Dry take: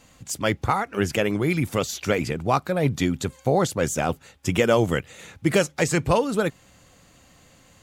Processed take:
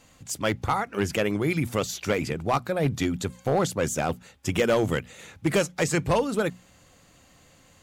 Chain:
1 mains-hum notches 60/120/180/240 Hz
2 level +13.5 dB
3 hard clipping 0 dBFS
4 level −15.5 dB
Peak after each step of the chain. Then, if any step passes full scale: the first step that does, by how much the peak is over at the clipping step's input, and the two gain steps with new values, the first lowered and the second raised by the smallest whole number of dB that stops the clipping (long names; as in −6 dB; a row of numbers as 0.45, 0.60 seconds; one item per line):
−6.5, +7.0, 0.0, −15.5 dBFS
step 2, 7.0 dB
step 2 +6.5 dB, step 4 −8.5 dB